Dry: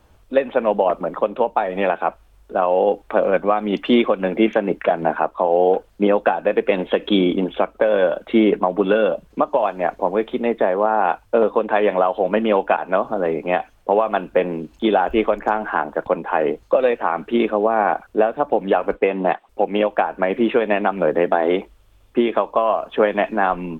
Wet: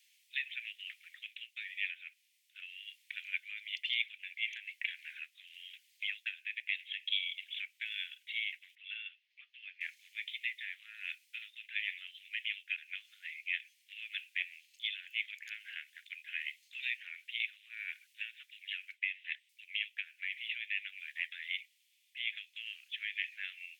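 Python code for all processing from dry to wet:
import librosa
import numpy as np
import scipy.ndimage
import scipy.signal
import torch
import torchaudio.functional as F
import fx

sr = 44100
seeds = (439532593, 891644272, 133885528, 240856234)

y = fx.chain(x, sr, fx.air_absorb(metres=290.0),
    fx.comb_fb(f0_hz=87.0, decay_s=0.15, harmonics='all', damping=0.0, mix_pct=50), at=(8.75, 9.81))
y = scipy.signal.sosfilt(scipy.signal.butter(12, 2000.0, 'highpass', fs=sr, output='sos'), y)
y = fx.rider(y, sr, range_db=3, speed_s=0.5)
y = y * librosa.db_to_amplitude(-3.5)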